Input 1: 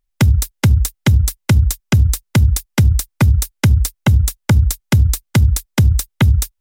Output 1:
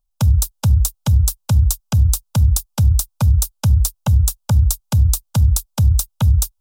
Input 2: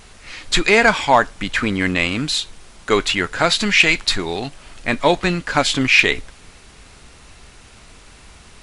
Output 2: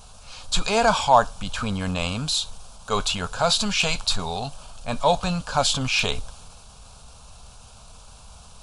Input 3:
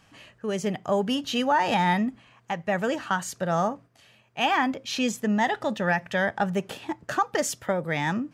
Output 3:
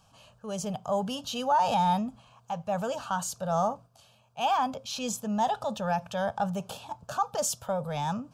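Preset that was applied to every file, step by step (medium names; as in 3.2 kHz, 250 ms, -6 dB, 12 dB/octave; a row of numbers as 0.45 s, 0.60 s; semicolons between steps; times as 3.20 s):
transient shaper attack -3 dB, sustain +3 dB; static phaser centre 810 Hz, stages 4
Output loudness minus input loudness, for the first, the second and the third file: -1.5 LU, -6.0 LU, -3.5 LU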